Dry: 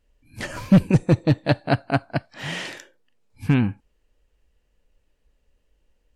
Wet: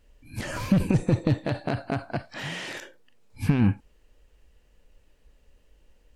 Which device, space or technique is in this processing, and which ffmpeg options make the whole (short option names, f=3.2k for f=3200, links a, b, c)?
de-esser from a sidechain: -filter_complex "[0:a]asplit=2[a][b];[b]highpass=f=4.9k:p=1,apad=whole_len=271448[c];[a][c]sidechaincompress=threshold=-47dB:ratio=6:attack=1.3:release=23,volume=7dB"